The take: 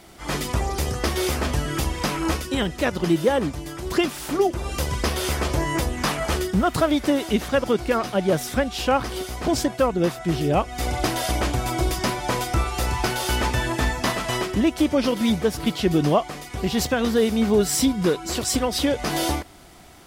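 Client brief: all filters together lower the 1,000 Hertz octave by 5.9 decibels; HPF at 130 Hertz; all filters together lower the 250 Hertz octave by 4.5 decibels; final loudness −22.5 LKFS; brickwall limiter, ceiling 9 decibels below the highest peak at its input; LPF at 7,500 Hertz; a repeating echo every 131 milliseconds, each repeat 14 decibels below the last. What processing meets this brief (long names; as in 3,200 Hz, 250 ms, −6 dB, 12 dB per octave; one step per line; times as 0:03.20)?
high-pass filter 130 Hz
low-pass filter 7,500 Hz
parametric band 250 Hz −5 dB
parametric band 1,000 Hz −8 dB
brickwall limiter −20.5 dBFS
repeating echo 131 ms, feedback 20%, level −14 dB
level +7.5 dB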